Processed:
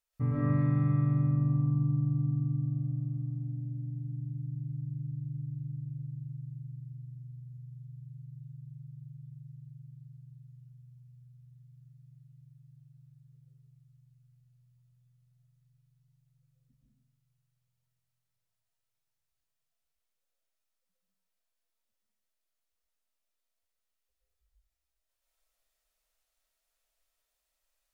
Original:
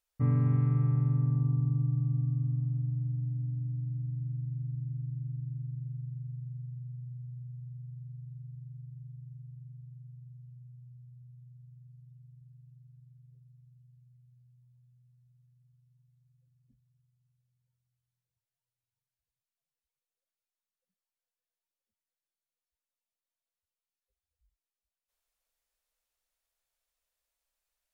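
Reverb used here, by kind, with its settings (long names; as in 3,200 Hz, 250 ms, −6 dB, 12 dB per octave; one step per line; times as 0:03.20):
comb and all-pass reverb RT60 0.7 s, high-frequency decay 0.95×, pre-delay 90 ms, DRR −6.5 dB
level −3 dB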